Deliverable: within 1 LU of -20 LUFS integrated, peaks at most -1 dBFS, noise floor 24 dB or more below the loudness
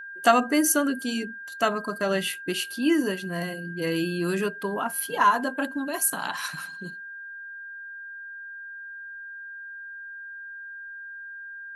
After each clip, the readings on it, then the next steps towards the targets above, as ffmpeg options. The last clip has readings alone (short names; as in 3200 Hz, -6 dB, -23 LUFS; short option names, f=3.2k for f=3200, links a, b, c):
steady tone 1600 Hz; tone level -37 dBFS; loudness -26.0 LUFS; peak -5.5 dBFS; loudness target -20.0 LUFS
-> -af "bandreject=f=1.6k:w=30"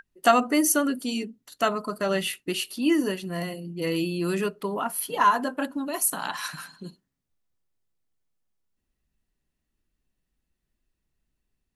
steady tone none; loudness -26.0 LUFS; peak -6.0 dBFS; loudness target -20.0 LUFS
-> -af "volume=6dB,alimiter=limit=-1dB:level=0:latency=1"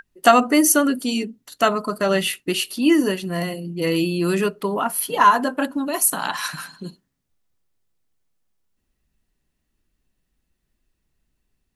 loudness -20.0 LUFS; peak -1.0 dBFS; noise floor -75 dBFS